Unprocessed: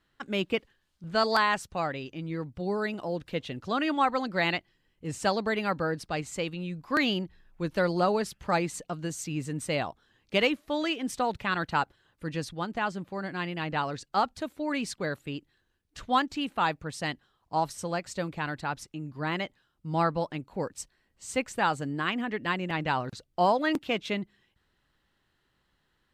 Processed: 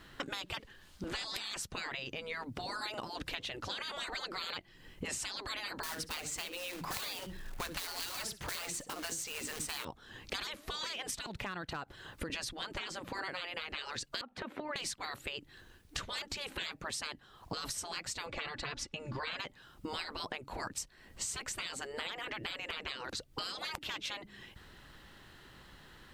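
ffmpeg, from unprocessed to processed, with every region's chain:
-filter_complex "[0:a]asettb=1/sr,asplit=3[s0][s1][s2];[s0]atrim=end=5.834[s3];[s1]atrim=start=5.83:end=9.85,asetpts=PTS-STARTPTS,afade=t=in:d=0.004:c=qsin,afade=t=out:st=4.016:d=0.004:c=qsin,acrusher=bits=4:mode=log:mix=0:aa=0.000001,aecho=1:1:63|126:0.106|0.0307,atrim=end_sample=177282[s4];[s2]atrim=start=9.846[s5];[s3][s4]acrossfade=d=0.004:c1=hsin:c2=qsin[s6];[s6][s5]acrossfade=d=0.004:c1=qsin:c2=hsin,asettb=1/sr,asplit=3[s7][s8][s9];[s7]atrim=end=11.264[s10];[s8]atrim=start=11.26:end=12.3,asetpts=PTS-STARTPTS,afade=t=in:d=0.004:c=qsin,afade=t=out:st=1.036:d=0.004:c=qsin,acompressor=threshold=0.00708:ratio=4:attack=3.2:release=140:knee=1:detection=peak,aeval=exprs='clip(val(0),-1,0.015)':c=same[s11];[s9]atrim=start=12.296[s12];[s10][s11]acrossfade=d=0.004:c1=hsin:c2=qsin[s13];[s13][s12]acrossfade=d=0.004:c1=qsin:c2=hsin,asettb=1/sr,asplit=3[s14][s15][s16];[s14]atrim=end=14.214[s17];[s15]atrim=start=14.21:end=14.76,asetpts=PTS-STARTPTS,afade=t=in:d=0.004:c=qsin,afade=t=out:st=0.546:d=0.004:c=qsin,acrossover=split=150 3000:gain=0.0708 1 0.0708[s18][s19][s20];[s18][s19][s20]amix=inputs=3:normalize=0,acompressor=threshold=0.0126:ratio=16:attack=3.2:release=140:knee=1:detection=peak[s21];[s16]atrim=start=14.756[s22];[s17][s21]acrossfade=d=0.004:c1=hsin:c2=qsin[s23];[s23][s22]acrossfade=d=0.004:c1=qsin:c2=hsin,asettb=1/sr,asplit=3[s24][s25][s26];[s24]atrim=end=18.264[s27];[s25]atrim=start=18.26:end=19.4,asetpts=PTS-STARTPTS,afade=t=in:d=0.004:c=qsin,afade=t=out:st=1.136:d=0.004:c=qsin,lowpass=6200,aecho=1:1:3.5:0.57,atrim=end_sample=50274[s28];[s26]atrim=start=19.396[s29];[s27][s28]acrossfade=d=0.004:c1=hsin:c2=qsin[s30];[s30][s29]acrossfade=d=0.004:c1=qsin:c2=hsin,afftfilt=real='re*lt(hypot(re,im),0.0447)':imag='im*lt(hypot(re,im),0.0447)':win_size=1024:overlap=0.75,acompressor=threshold=0.002:ratio=16,volume=7.5"

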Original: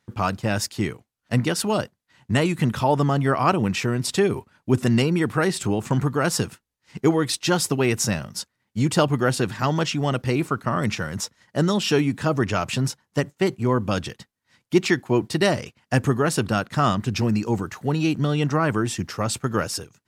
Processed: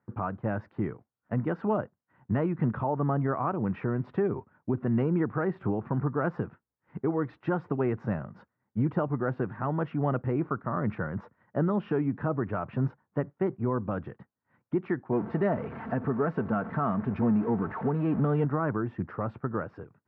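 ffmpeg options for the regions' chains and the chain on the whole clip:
-filter_complex "[0:a]asettb=1/sr,asplit=3[s0][s1][s2];[s0]atrim=end=15.124[s3];[s1]atrim=start=15.12:end=18.45,asetpts=PTS-STARTPTS,afade=t=in:d=0.004:c=qsin,afade=t=out:st=3.326:d=0.004:c=qsin,aeval=exprs='val(0)+0.5*0.0447*sgn(val(0))':c=same,aecho=1:1:4.5:0.41,atrim=end_sample=146853[s4];[s2]atrim=start=18.446[s5];[s3][s4]acrossfade=d=0.004:c1=hsin:c2=qsin[s6];[s6][s5]acrossfade=d=0.004:c1=qsin:c2=hsin,lowpass=f=1500:w=0.5412,lowpass=f=1500:w=1.3066,alimiter=limit=0.168:level=0:latency=1:release=342,highpass=82,volume=0.75"

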